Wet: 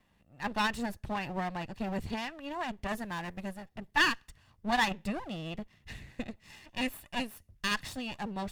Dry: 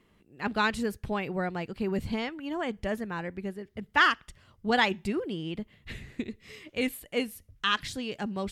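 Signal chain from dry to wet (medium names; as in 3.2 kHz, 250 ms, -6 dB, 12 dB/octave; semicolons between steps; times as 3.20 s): comb filter that takes the minimum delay 1.1 ms; 2.88–3.66 s: treble shelf 3.9 kHz +8.5 dB; trim -3 dB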